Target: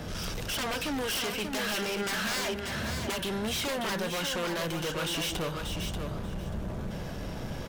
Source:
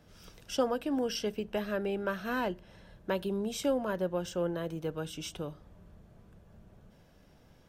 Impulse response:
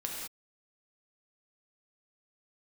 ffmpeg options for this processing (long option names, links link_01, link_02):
-filter_complex "[0:a]acrossover=split=4200[link_01][link_02];[link_02]acompressor=threshold=-52dB:ratio=4:attack=1:release=60[link_03];[link_01][link_03]amix=inputs=2:normalize=0,highshelf=frequency=12000:gain=-4.5,acrossover=split=1100[link_04][link_05];[link_04]acompressor=threshold=-47dB:ratio=6[link_06];[link_06][link_05]amix=inputs=2:normalize=0,aeval=exprs='0.0531*sin(PI/2*6.31*val(0)/0.0531)':channel_layout=same,asettb=1/sr,asplit=3[link_07][link_08][link_09];[link_07]atrim=end=2.414[link_10];[link_08]atrim=start=2.41:end=3.19,asetpts=PTS-STARTPTS,afade=type=in:duration=0.004:curve=qsin,afade=type=out:start_time=0.776:duration=0.004:curve=qsin,afreqshift=39[link_11];[link_09]atrim=start=3.186[link_12];[link_10][link_11]acrossfade=duration=0.004:curve1=hsin:curve2=qsin[link_13];[link_13][link_12]acrossfade=duration=0.004:curve1=qsin:curve2=hsin,asoftclip=type=tanh:threshold=-34.5dB,aecho=1:1:586|1172|1758:0.501|0.0902|0.0162,volume=4dB"